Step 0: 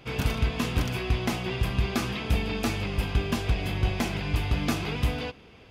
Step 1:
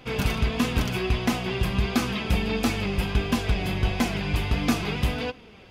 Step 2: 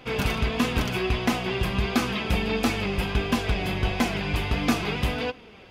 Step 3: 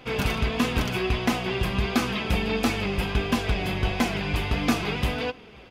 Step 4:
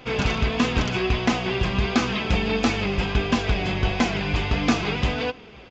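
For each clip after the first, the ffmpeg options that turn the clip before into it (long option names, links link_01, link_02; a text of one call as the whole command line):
ffmpeg -i in.wav -af "flanger=delay=3.8:depth=1.8:regen=52:speed=1.5:shape=triangular,volume=7dB" out.wav
ffmpeg -i in.wav -af "bass=frequency=250:gain=-4,treble=frequency=4000:gain=-3,volume=2dB" out.wav
ffmpeg -i in.wav -filter_complex "[0:a]asplit=2[link_01][link_02];[link_02]adelay=530.6,volume=-28dB,highshelf=frequency=4000:gain=-11.9[link_03];[link_01][link_03]amix=inputs=2:normalize=0" out.wav
ffmpeg -i in.wav -af "aresample=16000,aresample=44100,volume=2.5dB" out.wav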